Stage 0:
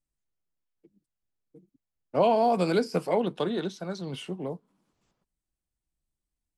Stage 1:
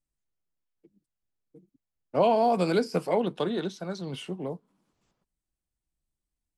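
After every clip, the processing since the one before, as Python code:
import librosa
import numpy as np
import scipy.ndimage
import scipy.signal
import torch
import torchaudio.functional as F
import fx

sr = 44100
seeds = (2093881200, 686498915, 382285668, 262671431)

y = x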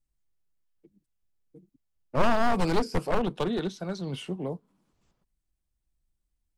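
y = np.minimum(x, 2.0 * 10.0 ** (-24.0 / 20.0) - x)
y = fx.low_shelf(y, sr, hz=97.0, db=10.0)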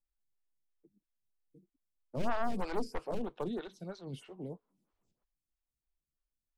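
y = fx.stagger_phaser(x, sr, hz=3.1)
y = F.gain(torch.from_numpy(y), -7.5).numpy()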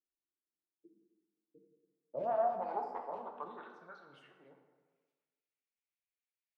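y = fx.filter_sweep_bandpass(x, sr, from_hz=330.0, to_hz=2300.0, start_s=1.01, end_s=4.93, q=3.4)
y = fx.rev_plate(y, sr, seeds[0], rt60_s=1.4, hf_ratio=0.6, predelay_ms=0, drr_db=2.5)
y = F.gain(torch.from_numpy(y), 3.5).numpy()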